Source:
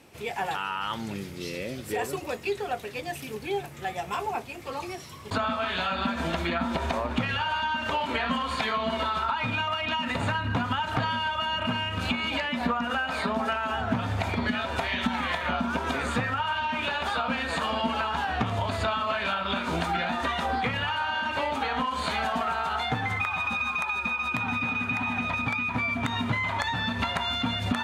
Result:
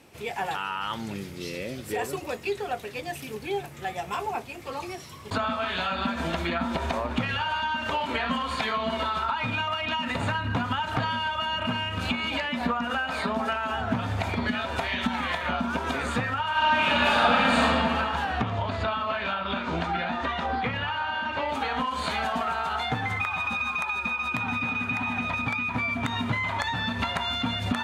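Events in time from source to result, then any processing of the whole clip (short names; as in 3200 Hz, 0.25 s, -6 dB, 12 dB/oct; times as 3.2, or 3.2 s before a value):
16.5–17.61 reverb throw, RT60 2.5 s, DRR -7 dB
18.41–21.49 air absorption 120 m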